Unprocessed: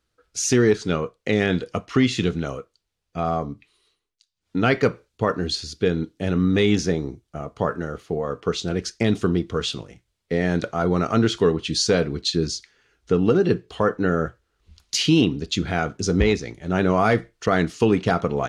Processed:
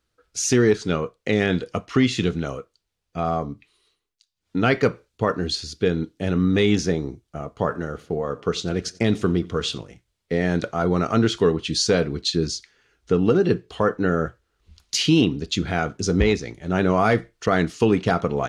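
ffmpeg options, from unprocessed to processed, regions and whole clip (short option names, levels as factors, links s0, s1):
-filter_complex "[0:a]asettb=1/sr,asplit=3[s0][s1][s2];[s0]atrim=end=7.564[s3];[s1]atrim=start=7.56:end=9.78,asetpts=PTS-STARTPTS,afade=t=in:d=0.004:c=qsin,afade=t=out:st=2.216:d=0.004:c=qsin,agate=range=0.0224:threshold=0.00355:ratio=3:release=100:detection=peak,aecho=1:1:90|180|270:0.075|0.0352|0.0166,atrim=end_sample=97902[s4];[s2]atrim=start=9.776[s5];[s3][s4]acrossfade=d=0.004:c1=hsin:c2=qsin[s6];[s6][s5]acrossfade=d=0.004:c1=qsin:c2=hsin"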